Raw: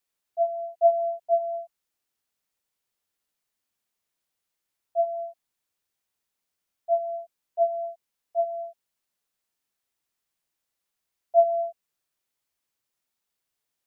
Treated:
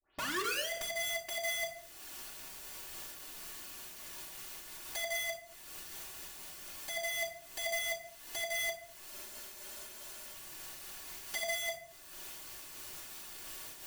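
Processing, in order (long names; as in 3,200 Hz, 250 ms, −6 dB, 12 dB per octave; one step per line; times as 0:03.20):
turntable start at the beginning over 0.69 s
camcorder AGC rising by 43 dB per second
dynamic equaliser 740 Hz, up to −5 dB, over −33 dBFS, Q 0.83
downward compressor 4 to 1, threshold −37 dBFS, peak gain reduction 15.5 dB
wrap-around overflow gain 37 dB
convolution reverb RT60 0.65 s, pre-delay 3 ms, DRR −5.5 dB
frozen spectrum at 0:09.13, 1.21 s
amplitude modulation by smooth noise, depth 55%
level +2 dB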